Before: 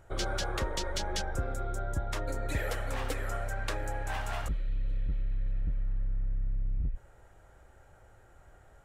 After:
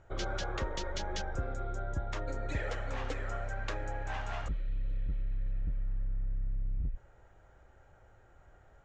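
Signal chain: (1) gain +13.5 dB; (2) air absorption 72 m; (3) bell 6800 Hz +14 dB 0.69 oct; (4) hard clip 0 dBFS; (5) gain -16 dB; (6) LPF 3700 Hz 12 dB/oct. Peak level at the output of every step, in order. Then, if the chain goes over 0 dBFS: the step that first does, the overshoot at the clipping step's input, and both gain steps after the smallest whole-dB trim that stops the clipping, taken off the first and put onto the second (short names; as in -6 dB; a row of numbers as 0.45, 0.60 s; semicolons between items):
-7.0, -7.5, -4.5, -4.5, -20.5, -23.5 dBFS; no overload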